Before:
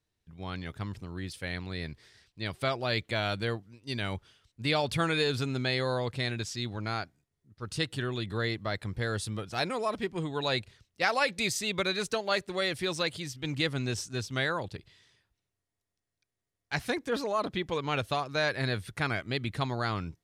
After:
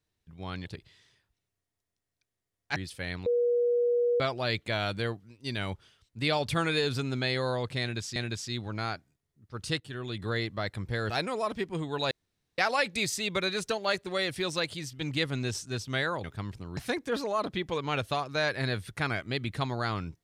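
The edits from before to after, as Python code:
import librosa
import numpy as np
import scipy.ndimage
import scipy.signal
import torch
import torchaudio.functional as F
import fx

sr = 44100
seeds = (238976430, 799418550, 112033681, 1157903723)

y = fx.edit(x, sr, fx.swap(start_s=0.66, length_s=0.53, other_s=14.67, other_length_s=2.1),
    fx.bleep(start_s=1.69, length_s=0.94, hz=481.0, db=-22.5),
    fx.repeat(start_s=6.24, length_s=0.35, count=2),
    fx.fade_in_from(start_s=7.88, length_s=0.44, floor_db=-12.0),
    fx.cut(start_s=9.18, length_s=0.35),
    fx.room_tone_fill(start_s=10.54, length_s=0.47), tone=tone)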